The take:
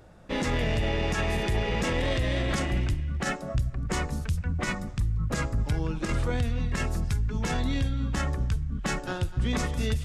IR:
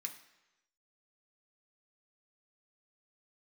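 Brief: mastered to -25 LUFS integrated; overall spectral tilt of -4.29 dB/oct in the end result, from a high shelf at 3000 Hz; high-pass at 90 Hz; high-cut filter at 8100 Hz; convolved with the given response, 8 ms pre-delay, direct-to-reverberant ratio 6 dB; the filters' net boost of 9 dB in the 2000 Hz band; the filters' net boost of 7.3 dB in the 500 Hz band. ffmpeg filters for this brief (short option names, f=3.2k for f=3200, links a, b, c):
-filter_complex "[0:a]highpass=90,lowpass=8.1k,equalizer=f=500:t=o:g=8,equalizer=f=2k:t=o:g=8,highshelf=f=3k:g=6.5,asplit=2[a][b];[1:a]atrim=start_sample=2205,adelay=8[c];[b][c]afir=irnorm=-1:irlink=0,volume=-3.5dB[d];[a][d]amix=inputs=2:normalize=0"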